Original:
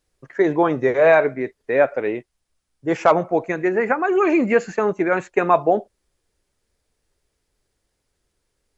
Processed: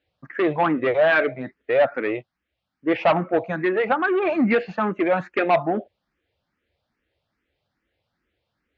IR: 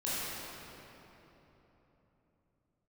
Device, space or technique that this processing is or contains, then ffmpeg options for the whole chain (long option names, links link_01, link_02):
barber-pole phaser into a guitar amplifier: -filter_complex "[0:a]asplit=2[link_01][link_02];[link_02]afreqshift=2.4[link_03];[link_01][link_03]amix=inputs=2:normalize=1,asoftclip=type=tanh:threshold=-16dB,highpass=93,equalizer=frequency=140:width_type=q:width=4:gain=-4,equalizer=frequency=410:width_type=q:width=4:gain=-8,equalizer=frequency=1000:width_type=q:width=4:gain=-5,lowpass=frequency=3600:width=0.5412,lowpass=frequency=3600:width=1.3066,volume=5.5dB"